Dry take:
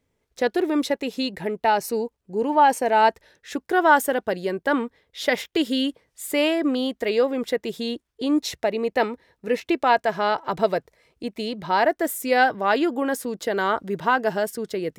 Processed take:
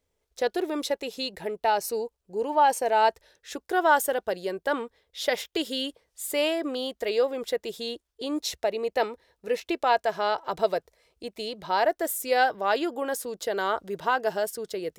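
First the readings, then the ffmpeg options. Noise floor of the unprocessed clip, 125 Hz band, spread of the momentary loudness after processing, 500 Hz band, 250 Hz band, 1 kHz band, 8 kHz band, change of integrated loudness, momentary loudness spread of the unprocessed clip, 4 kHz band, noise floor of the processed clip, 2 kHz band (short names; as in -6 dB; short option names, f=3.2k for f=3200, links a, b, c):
-76 dBFS, under -10 dB, 12 LU, -3.5 dB, -9.5 dB, -4.0 dB, 0.0 dB, -4.5 dB, 10 LU, -2.0 dB, -79 dBFS, -5.5 dB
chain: -af "equalizer=f=125:t=o:w=1:g=-10,equalizer=f=250:t=o:w=1:g=-10,equalizer=f=1k:t=o:w=1:g=-3,equalizer=f=2k:t=o:w=1:g=-6"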